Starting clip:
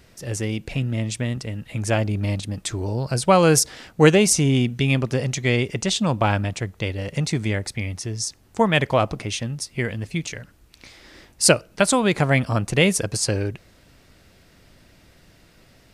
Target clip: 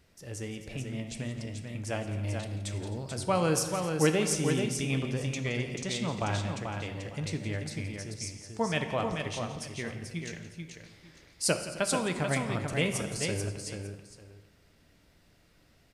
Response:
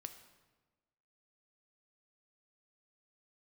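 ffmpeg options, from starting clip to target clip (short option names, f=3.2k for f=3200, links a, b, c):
-filter_complex "[0:a]aecho=1:1:171|262|437|896:0.178|0.119|0.531|0.112[a];[1:a]atrim=start_sample=2205[b];[a][b]afir=irnorm=-1:irlink=0,volume=-7dB"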